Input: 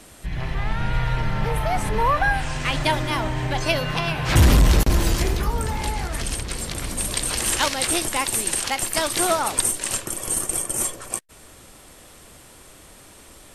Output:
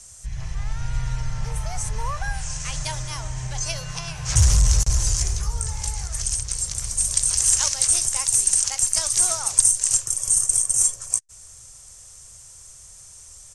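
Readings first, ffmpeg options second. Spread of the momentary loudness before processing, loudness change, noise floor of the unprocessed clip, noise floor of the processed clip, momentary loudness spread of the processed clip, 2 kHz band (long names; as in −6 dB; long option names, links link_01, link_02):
9 LU, +1.5 dB, −47 dBFS, −45 dBFS, 13 LU, −11.0 dB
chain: -af "firequalizer=gain_entry='entry(110,0);entry(260,-25);entry(460,-13);entry(1100,-9);entry(1900,-10);entry(3800,-7);entry(6100,13);entry(9500,5);entry(14000,-20)':delay=0.05:min_phase=1,volume=-1.5dB"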